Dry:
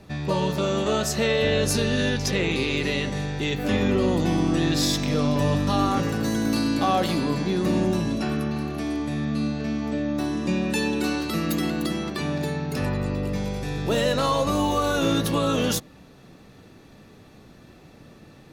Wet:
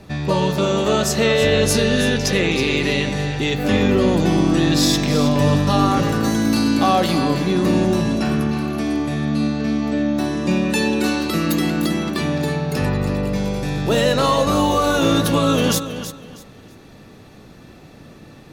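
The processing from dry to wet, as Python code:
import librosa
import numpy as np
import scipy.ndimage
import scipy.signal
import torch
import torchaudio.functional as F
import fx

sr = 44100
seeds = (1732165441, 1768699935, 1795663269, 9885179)

y = fx.echo_feedback(x, sr, ms=322, feedback_pct=25, wet_db=-11)
y = y * 10.0 ** (5.5 / 20.0)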